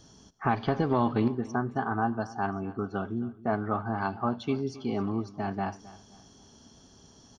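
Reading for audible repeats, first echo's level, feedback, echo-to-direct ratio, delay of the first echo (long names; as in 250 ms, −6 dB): 2, −18.5 dB, 35%, −18.0 dB, 265 ms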